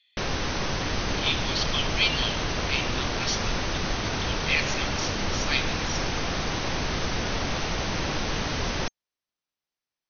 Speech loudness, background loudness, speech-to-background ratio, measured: -29.0 LUFS, -28.5 LUFS, -0.5 dB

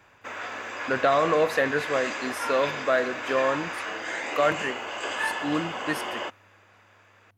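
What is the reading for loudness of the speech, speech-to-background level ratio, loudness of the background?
-26.5 LUFS, 5.0 dB, -31.5 LUFS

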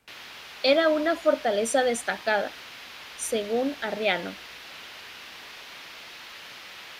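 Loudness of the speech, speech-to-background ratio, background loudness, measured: -25.5 LUFS, 15.5 dB, -41.0 LUFS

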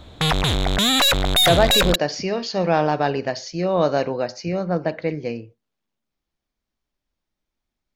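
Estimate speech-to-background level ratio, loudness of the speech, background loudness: -4.5 dB, -22.5 LUFS, -18.0 LUFS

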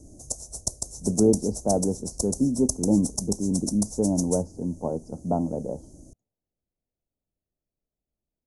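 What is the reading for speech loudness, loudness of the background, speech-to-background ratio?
-26.0 LUFS, -32.0 LUFS, 6.0 dB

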